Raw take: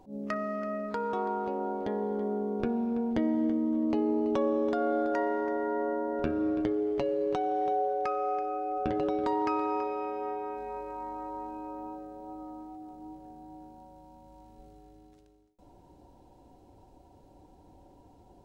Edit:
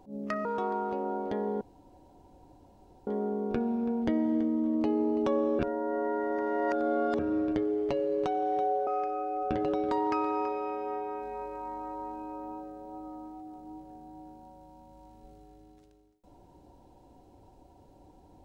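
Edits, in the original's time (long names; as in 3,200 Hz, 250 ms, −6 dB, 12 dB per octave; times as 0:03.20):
0:00.45–0:01.00: remove
0:02.16: splice in room tone 1.46 s
0:04.68–0:06.28: reverse
0:07.96–0:08.22: remove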